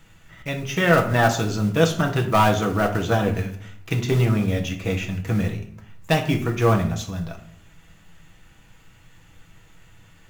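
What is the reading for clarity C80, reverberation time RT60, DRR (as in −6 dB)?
14.0 dB, 0.65 s, 2.5 dB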